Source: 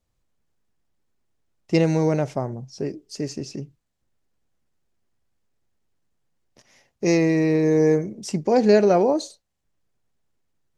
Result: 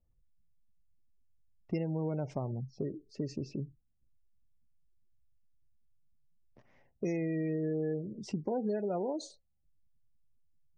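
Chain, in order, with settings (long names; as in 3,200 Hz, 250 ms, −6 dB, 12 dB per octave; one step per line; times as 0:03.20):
gate on every frequency bin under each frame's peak −25 dB strong
low-pass that shuts in the quiet parts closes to 1,600 Hz, open at −18 dBFS
low-shelf EQ 120 Hz +10 dB
downward compressor 5 to 1, threshold −26 dBFS, peak gain reduction 14 dB
level −6 dB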